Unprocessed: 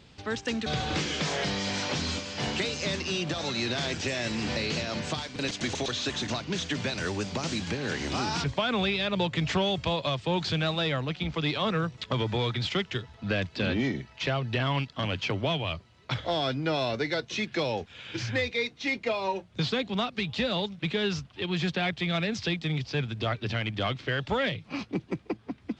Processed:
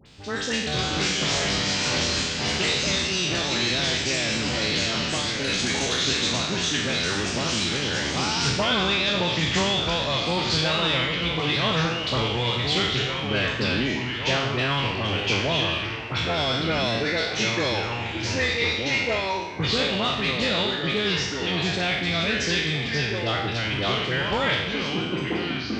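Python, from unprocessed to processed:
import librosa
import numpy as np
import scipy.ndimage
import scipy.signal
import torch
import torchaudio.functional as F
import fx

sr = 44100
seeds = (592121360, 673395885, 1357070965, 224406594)

y = fx.spec_trails(x, sr, decay_s=0.9)
y = fx.high_shelf(y, sr, hz=3400.0, db=8.5)
y = fx.dispersion(y, sr, late='highs', ms=60.0, hz=1600.0)
y = fx.echo_pitch(y, sr, ms=422, semitones=-3, count=3, db_per_echo=-6.0)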